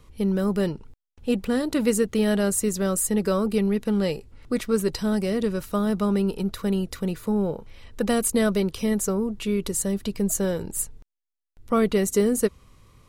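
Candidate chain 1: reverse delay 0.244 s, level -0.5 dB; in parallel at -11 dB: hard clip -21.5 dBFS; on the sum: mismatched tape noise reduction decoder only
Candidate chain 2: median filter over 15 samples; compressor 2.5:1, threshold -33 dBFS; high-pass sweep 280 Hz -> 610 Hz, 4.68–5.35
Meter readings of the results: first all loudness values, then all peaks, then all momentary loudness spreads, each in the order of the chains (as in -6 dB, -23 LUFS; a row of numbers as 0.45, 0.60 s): -21.0, -33.5 LUFS; -5.0, -16.0 dBFS; 6, 12 LU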